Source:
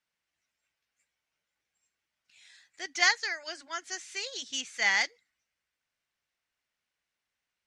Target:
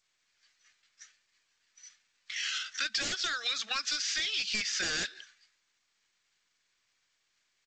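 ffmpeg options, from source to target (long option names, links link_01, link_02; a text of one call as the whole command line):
ffmpeg -i in.wav -filter_complex "[0:a]asetrate=35002,aresample=44100,atempo=1.25992,acrossover=split=410|1000[link_01][link_02][link_03];[link_03]aeval=exprs='0.237*sin(PI/2*7.94*val(0)/0.237)':channel_layout=same[link_04];[link_01][link_02][link_04]amix=inputs=3:normalize=0,bandreject=frequency=950:width=7.6,alimiter=limit=-19.5dB:level=0:latency=1:release=145,equalizer=frequency=1000:width_type=o:width=1.3:gain=-10,acompressor=threshold=-34dB:ratio=10,asplit=2[link_05][link_06];[link_06]adelay=180,highpass=300,lowpass=3400,asoftclip=type=hard:threshold=-33dB,volume=-26dB[link_07];[link_05][link_07]amix=inputs=2:normalize=0,agate=range=-33dB:threshold=-57dB:ratio=3:detection=peak,volume=5dB" -ar 16000 -c:a g722 out.g722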